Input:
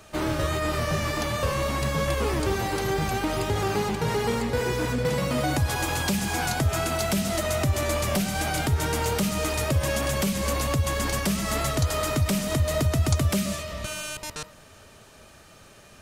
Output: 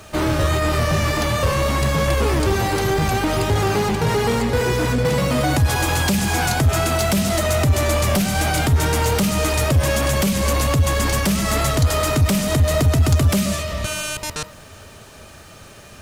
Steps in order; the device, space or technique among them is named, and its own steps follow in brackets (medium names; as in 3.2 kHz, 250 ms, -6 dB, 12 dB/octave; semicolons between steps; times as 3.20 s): open-reel tape (saturation -20.5 dBFS, distortion -16 dB; peaking EQ 86 Hz +4 dB 0.94 oct; white noise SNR 44 dB); trim +8 dB